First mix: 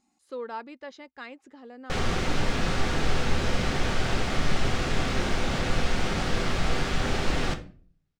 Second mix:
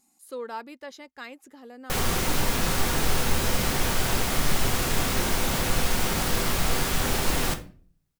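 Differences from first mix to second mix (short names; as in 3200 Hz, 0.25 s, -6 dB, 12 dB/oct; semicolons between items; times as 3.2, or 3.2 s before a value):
background: add bell 980 Hz +5.5 dB 0.22 oct; master: remove air absorption 120 m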